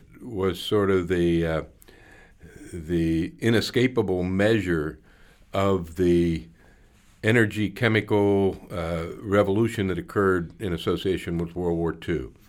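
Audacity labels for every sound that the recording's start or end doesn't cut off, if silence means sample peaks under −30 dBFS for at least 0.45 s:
2.730000	4.910000	sound
5.540000	6.390000	sound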